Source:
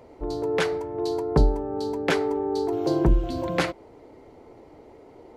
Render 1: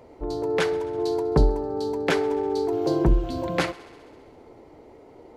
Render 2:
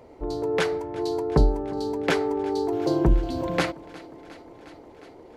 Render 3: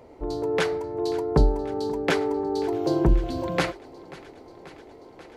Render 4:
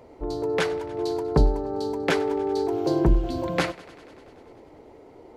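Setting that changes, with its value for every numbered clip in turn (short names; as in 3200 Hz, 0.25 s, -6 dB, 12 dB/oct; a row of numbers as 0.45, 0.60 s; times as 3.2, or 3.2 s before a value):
thinning echo, time: 66, 358, 536, 97 ms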